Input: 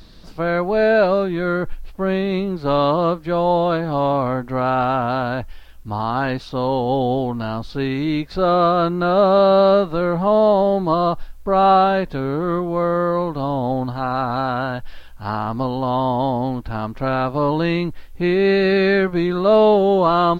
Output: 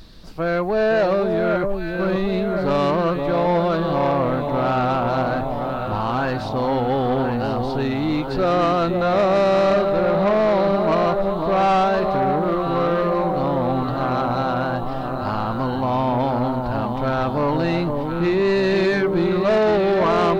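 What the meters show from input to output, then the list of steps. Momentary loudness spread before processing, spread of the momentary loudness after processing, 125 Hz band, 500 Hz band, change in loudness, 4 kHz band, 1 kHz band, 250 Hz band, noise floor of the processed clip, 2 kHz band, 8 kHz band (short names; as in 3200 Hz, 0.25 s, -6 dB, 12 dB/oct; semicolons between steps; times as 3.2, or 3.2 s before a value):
11 LU, 6 LU, -0.5 dB, -1.5 dB, -1.5 dB, -1.5 dB, -1.5 dB, -1.0 dB, -25 dBFS, -0.5 dB, n/a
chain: echo with dull and thin repeats by turns 0.518 s, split 900 Hz, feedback 72%, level -5 dB; soft clip -13 dBFS, distortion -13 dB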